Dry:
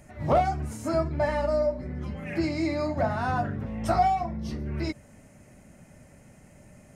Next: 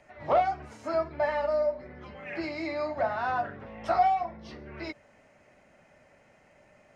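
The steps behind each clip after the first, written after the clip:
three-way crossover with the lows and the highs turned down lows −16 dB, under 410 Hz, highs −24 dB, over 4,900 Hz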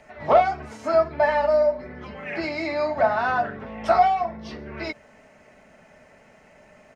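comb filter 4.6 ms, depth 33%
level +7 dB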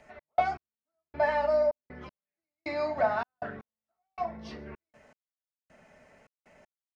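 gate pattern "x.x...xx" 79 BPM −60 dB
level −6 dB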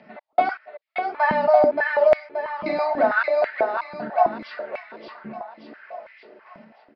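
on a send: repeating echo 577 ms, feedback 48%, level −4 dB
on the sum: downsampling to 11,025 Hz
high-pass on a step sequencer 6.1 Hz 200–2,100 Hz
level +5 dB

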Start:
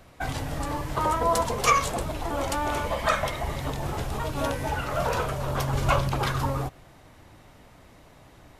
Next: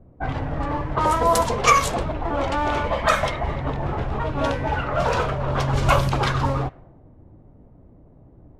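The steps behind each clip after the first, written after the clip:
low-pass that shuts in the quiet parts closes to 350 Hz, open at −19.5 dBFS
level +5 dB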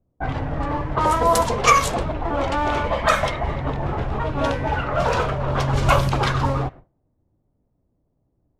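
noise gate with hold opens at −36 dBFS
level +1 dB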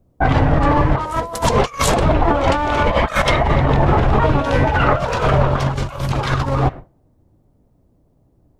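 compressor whose output falls as the input rises −24 dBFS, ratio −0.5
level +8.5 dB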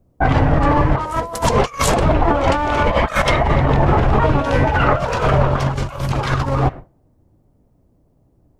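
parametric band 3,700 Hz −2.5 dB 0.4 octaves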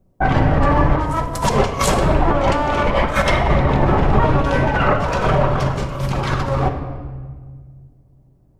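rectangular room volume 2,000 cubic metres, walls mixed, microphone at 1.1 metres
level −2 dB

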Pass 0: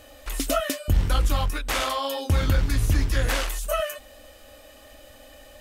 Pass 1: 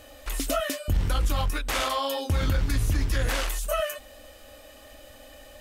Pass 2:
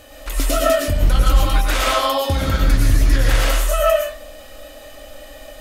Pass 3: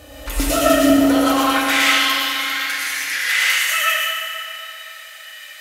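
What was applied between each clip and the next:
brickwall limiter −16.5 dBFS, peak gain reduction 4.5 dB
convolution reverb RT60 0.50 s, pre-delay 74 ms, DRR −2.5 dB; level +4.5 dB
high-pass filter sweep 63 Hz → 2,000 Hz, 0:00.39–0:01.64; feedback delay network reverb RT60 3.3 s, high-frequency decay 0.6×, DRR −2 dB

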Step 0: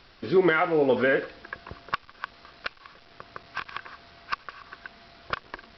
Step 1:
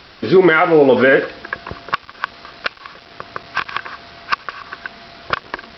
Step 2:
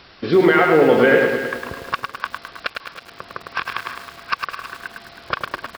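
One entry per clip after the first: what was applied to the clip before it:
high-pass filter 85 Hz 6 dB per octave; boost into a limiter +14 dB; level −1 dB
repeating echo 323 ms, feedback 32%, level −14.5 dB; feedback echo at a low word length 105 ms, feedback 55%, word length 6 bits, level −4.5 dB; level −4 dB

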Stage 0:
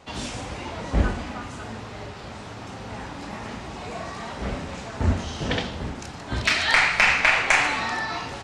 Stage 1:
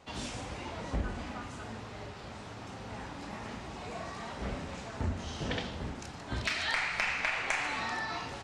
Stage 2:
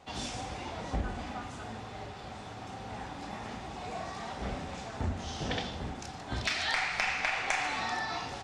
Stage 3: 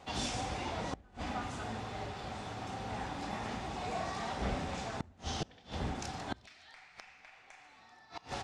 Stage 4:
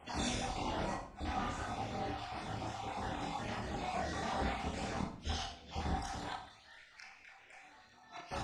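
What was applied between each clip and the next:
downward compressor 3 to 1, threshold −23 dBFS, peak gain reduction 7.5 dB; level −7 dB
dynamic equaliser 5,400 Hz, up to +4 dB, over −55 dBFS, Q 2; hollow resonant body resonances 760/3,500 Hz, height 9 dB
gate with flip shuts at −25 dBFS, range −27 dB; level +1.5 dB
time-frequency cells dropped at random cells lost 37%; multi-voice chorus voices 6, 0.93 Hz, delay 27 ms, depth 3 ms; convolution reverb RT60 0.60 s, pre-delay 22 ms, DRR 2.5 dB; level +2.5 dB

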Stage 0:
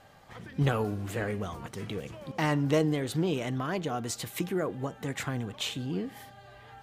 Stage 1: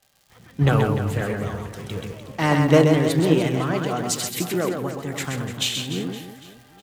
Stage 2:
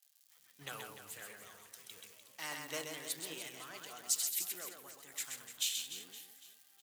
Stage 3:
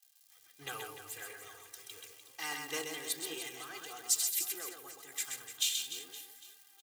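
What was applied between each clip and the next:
surface crackle 130 per second −38 dBFS; on a send: reverse bouncing-ball delay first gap 130 ms, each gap 1.3×, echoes 5; on the sum: multiband upward and downward expander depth 70%; level +6 dB
first difference; level −6.5 dB
comb filter 2.5 ms, depth 86%; level +1 dB

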